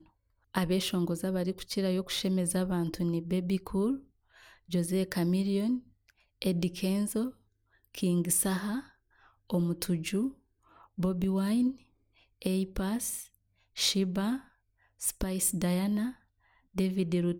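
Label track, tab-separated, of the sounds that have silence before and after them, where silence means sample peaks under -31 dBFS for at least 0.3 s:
0.550000	3.950000	sound
4.730000	5.770000	sound
6.420000	7.270000	sound
7.950000	8.790000	sound
9.500000	10.280000	sound
10.990000	11.700000	sound
12.420000	13.190000	sound
13.780000	14.360000	sound
15.030000	16.090000	sound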